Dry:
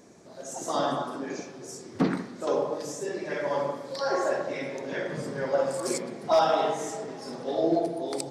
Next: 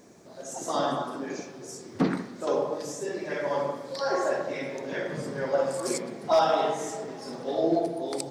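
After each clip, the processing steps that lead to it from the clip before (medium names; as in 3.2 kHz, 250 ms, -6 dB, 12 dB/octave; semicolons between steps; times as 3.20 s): word length cut 12-bit, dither none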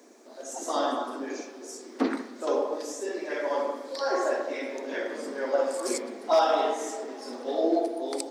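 steep high-pass 230 Hz 72 dB/octave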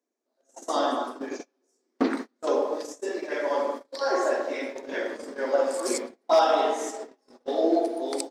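gate -34 dBFS, range -33 dB; trim +2 dB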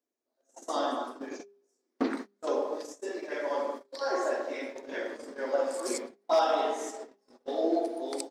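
de-hum 201.4 Hz, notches 2; trim -5 dB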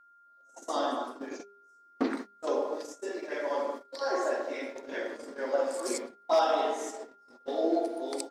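whistle 1.4 kHz -57 dBFS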